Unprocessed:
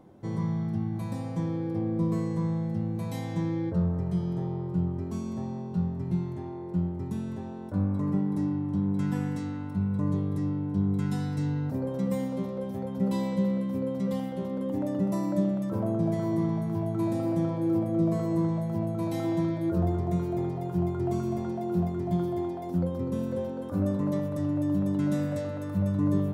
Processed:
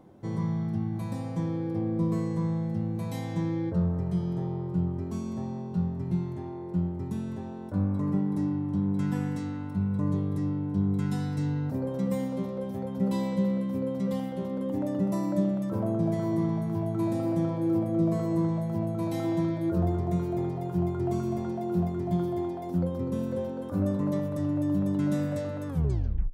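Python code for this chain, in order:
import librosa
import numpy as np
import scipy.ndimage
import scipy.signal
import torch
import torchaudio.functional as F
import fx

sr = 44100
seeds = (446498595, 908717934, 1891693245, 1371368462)

y = fx.tape_stop_end(x, sr, length_s=0.66)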